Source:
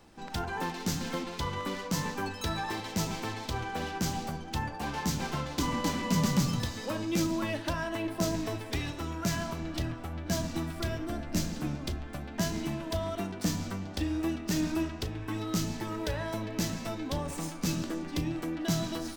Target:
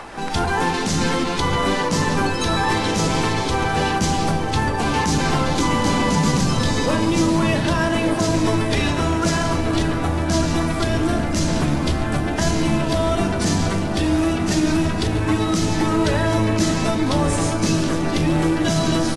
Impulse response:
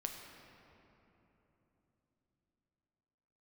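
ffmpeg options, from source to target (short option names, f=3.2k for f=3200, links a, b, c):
-filter_complex "[0:a]bandreject=f=60:t=h:w=6,bandreject=f=120:t=h:w=6,bandreject=f=180:t=h:w=6,bandreject=f=240:t=h:w=6,bandreject=f=300:t=h:w=6,acrossover=split=600|2300[a][b][c];[b]acompressor=mode=upward:threshold=-43dB:ratio=2.5[d];[a][d][c]amix=inputs=3:normalize=0,alimiter=level_in=3dB:limit=-24dB:level=0:latency=1:release=19,volume=-3dB,acontrast=39,acrusher=bits=4:mode=log:mix=0:aa=0.000001,aeval=exprs='0.0944*(cos(1*acos(clip(val(0)/0.0944,-1,1)))-cos(1*PI/2))+0.00473*(cos(5*acos(clip(val(0)/0.0944,-1,1)))-cos(5*PI/2))':c=same,asplit=2[e][f];[f]adelay=1193,lowpass=f=910:p=1,volume=-6dB,asplit=2[g][h];[h]adelay=1193,lowpass=f=910:p=1,volume=0.48,asplit=2[i][j];[j]adelay=1193,lowpass=f=910:p=1,volume=0.48,asplit=2[k][l];[l]adelay=1193,lowpass=f=910:p=1,volume=0.48,asplit=2[m][n];[n]adelay=1193,lowpass=f=910:p=1,volume=0.48,asplit=2[o][p];[p]adelay=1193,lowpass=f=910:p=1,volume=0.48[q];[e][g][i][k][m][o][q]amix=inputs=7:normalize=0,asplit=2[r][s];[1:a]atrim=start_sample=2205[t];[s][t]afir=irnorm=-1:irlink=0,volume=-2.5dB[u];[r][u]amix=inputs=2:normalize=0,volume=4.5dB" -ar 24000 -c:a aac -b:a 32k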